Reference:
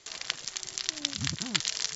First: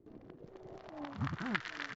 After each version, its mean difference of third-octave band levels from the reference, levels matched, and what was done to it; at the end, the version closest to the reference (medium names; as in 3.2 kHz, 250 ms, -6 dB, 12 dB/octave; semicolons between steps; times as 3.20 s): 11.5 dB: on a send: delay 771 ms -6 dB; on the sum: compression, threshold -32 dBFS, peak gain reduction 12 dB; low-pass sweep 290 Hz -> 1.6 kHz, 0.18–1.52 s; trim +3 dB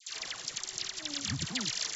4.5 dB: peak limiter -13.5 dBFS, peak gain reduction 9.5 dB; phase dispersion lows, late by 103 ms, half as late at 1.1 kHz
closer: second